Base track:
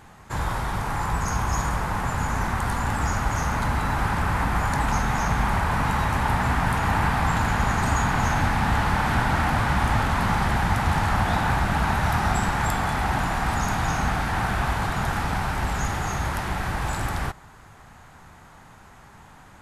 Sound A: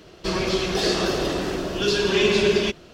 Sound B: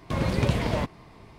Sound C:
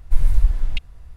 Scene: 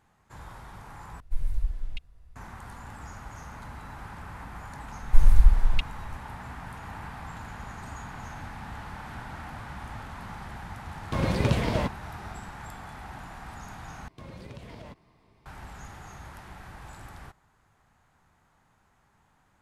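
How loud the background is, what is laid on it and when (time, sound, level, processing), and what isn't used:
base track −18 dB
0:01.20: overwrite with C −12 dB
0:05.02: mix in C −0.5 dB
0:11.02: mix in B −0.5 dB
0:14.08: overwrite with B −13 dB + downward compressor 3 to 1, threshold −28 dBFS
not used: A

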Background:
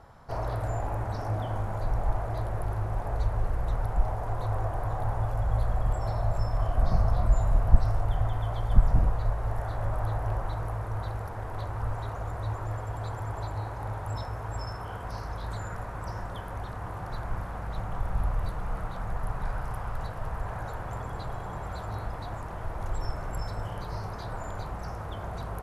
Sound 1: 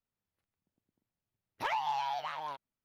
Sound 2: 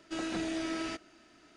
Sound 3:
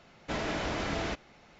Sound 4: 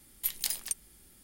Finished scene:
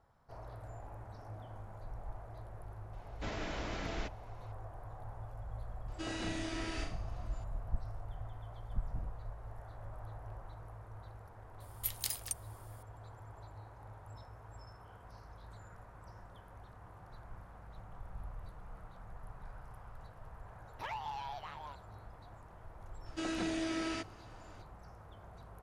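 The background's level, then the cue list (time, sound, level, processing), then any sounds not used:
background −17.5 dB
0:02.93: mix in 3 −8 dB
0:05.88: mix in 2 −4.5 dB + flutter between parallel walls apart 6 metres, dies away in 0.46 s
0:11.60: mix in 4 −4.5 dB + elliptic high-pass filter 160 Hz
0:19.19: mix in 1 −8.5 dB
0:23.06: mix in 2 −1.5 dB

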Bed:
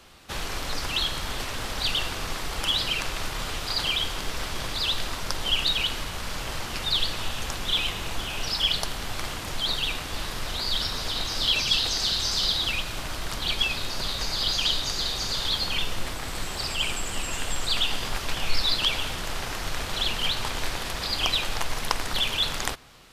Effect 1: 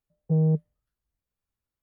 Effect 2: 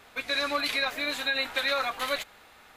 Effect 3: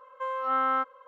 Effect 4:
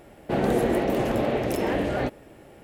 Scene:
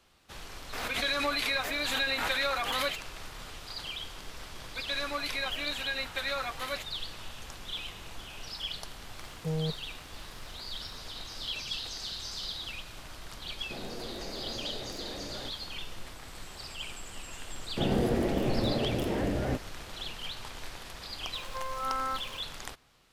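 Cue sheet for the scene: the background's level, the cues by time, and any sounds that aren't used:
bed −13 dB
0:00.73: mix in 2 −3 dB + background raised ahead of every attack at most 38 dB per second
0:04.60: mix in 2 −6 dB
0:09.15: mix in 1 −0.5 dB + spectral tilt +4 dB per octave
0:13.41: mix in 4 −13 dB + brickwall limiter −21.5 dBFS
0:17.48: mix in 4 −9 dB + low-shelf EQ 230 Hz +11 dB
0:21.34: mix in 3 −7.5 dB + converter with a step at zero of −38.5 dBFS

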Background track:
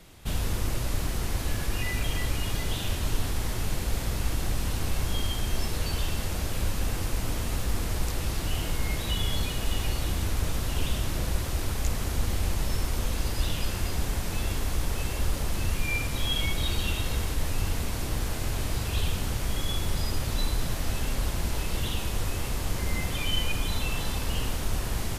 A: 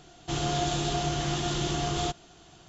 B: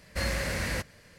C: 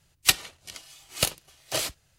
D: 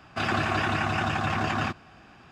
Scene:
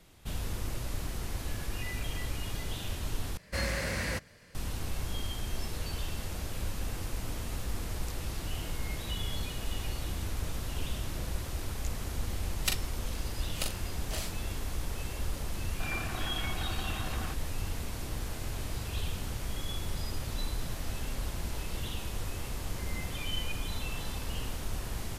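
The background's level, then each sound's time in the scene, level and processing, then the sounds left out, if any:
background track −7 dB
0:03.37: overwrite with B −2 dB
0:12.39: mix in C −12 dB + double-tracking delay 41 ms −5 dB
0:15.63: mix in D −14.5 dB
not used: A

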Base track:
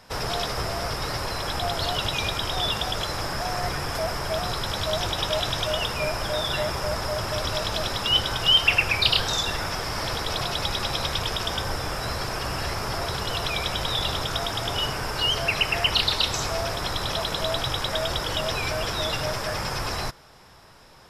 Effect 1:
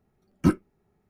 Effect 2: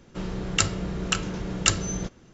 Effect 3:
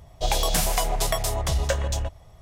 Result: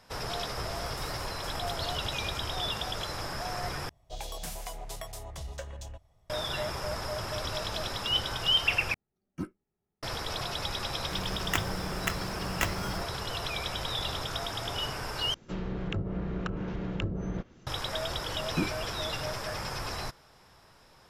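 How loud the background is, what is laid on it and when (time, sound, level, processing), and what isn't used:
base track −7 dB
0:00.43: mix in 3 −16.5 dB + downward compressor, threshold −24 dBFS
0:03.89: overwrite with 3 −16 dB
0:08.94: overwrite with 1 −16 dB
0:10.95: mix in 2 −7.5 dB + sample-rate reduction 4,700 Hz
0:15.34: overwrite with 2 −3 dB + treble cut that deepens with the level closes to 500 Hz, closed at −21 dBFS
0:18.13: mix in 1 −1.5 dB + brickwall limiter −18 dBFS

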